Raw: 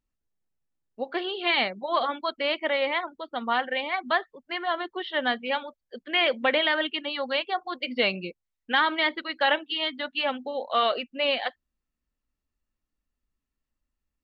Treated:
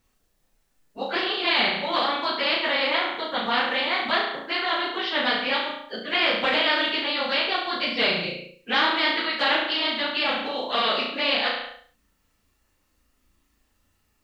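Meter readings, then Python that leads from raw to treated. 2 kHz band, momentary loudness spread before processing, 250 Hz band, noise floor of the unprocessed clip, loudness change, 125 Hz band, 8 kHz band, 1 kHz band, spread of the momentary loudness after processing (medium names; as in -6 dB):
+3.5 dB, 9 LU, +3.0 dB, -85 dBFS, +3.5 dB, +4.5 dB, no reading, +2.0 dB, 6 LU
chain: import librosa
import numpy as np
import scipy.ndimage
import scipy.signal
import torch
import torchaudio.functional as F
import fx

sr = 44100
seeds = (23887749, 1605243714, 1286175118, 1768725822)

y = fx.phase_scramble(x, sr, seeds[0], window_ms=50)
y = fx.low_shelf(y, sr, hz=180.0, db=-7.0)
y = fx.room_flutter(y, sr, wall_m=6.0, rt60_s=0.46)
y = fx.spectral_comp(y, sr, ratio=2.0)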